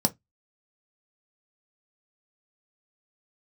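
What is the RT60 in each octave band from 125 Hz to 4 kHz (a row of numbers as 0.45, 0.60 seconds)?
0.25, 0.20, 0.15, 0.15, 0.15, 0.15 seconds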